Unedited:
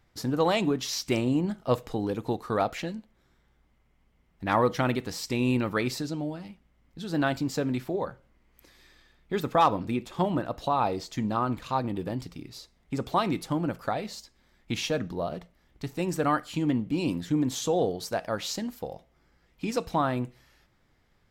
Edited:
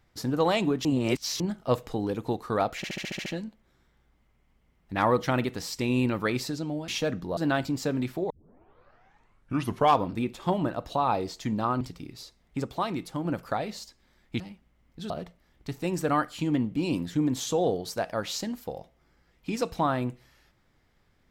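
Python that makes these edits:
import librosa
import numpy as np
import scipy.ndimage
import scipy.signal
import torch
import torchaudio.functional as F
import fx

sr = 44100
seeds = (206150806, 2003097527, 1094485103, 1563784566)

y = fx.edit(x, sr, fx.reverse_span(start_s=0.85, length_s=0.55),
    fx.stutter(start_s=2.77, slice_s=0.07, count=8),
    fx.swap(start_s=6.39, length_s=0.7, other_s=14.76, other_length_s=0.49),
    fx.tape_start(start_s=8.02, length_s=1.75),
    fx.cut(start_s=11.53, length_s=0.64),
    fx.clip_gain(start_s=13.0, length_s=0.61, db=-4.0), tone=tone)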